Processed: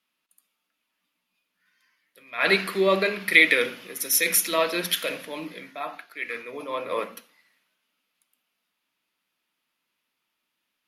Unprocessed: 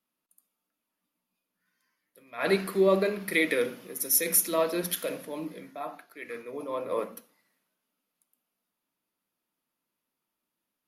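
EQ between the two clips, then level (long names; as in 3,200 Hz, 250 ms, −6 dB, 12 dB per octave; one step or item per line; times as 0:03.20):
parametric band 2,700 Hz +13.5 dB 2.4 octaves
−1.0 dB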